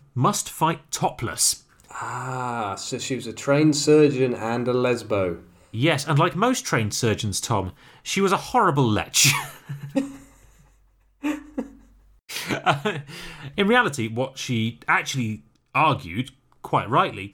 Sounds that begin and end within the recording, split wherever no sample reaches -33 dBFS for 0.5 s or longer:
11.24–11.66 s

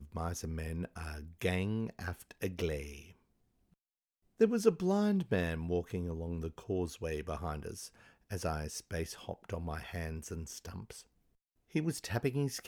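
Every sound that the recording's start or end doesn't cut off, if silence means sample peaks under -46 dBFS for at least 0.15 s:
4.40–7.88 s
8.30–11.01 s

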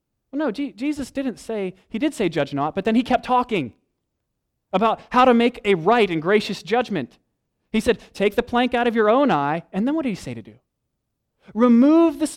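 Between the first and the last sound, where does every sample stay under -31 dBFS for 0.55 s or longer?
3.68–4.73 s
7.05–7.74 s
10.48–11.55 s

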